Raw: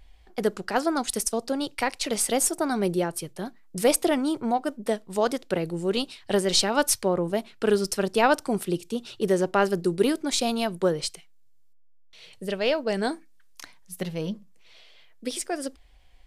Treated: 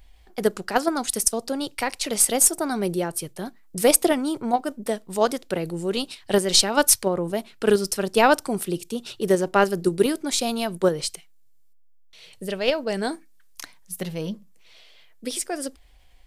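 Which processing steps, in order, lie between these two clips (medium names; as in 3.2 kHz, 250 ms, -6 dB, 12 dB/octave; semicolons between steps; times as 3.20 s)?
treble shelf 9.1 kHz +8.5 dB; in parallel at -1 dB: level held to a coarse grid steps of 21 dB; on the sum: trim -1 dB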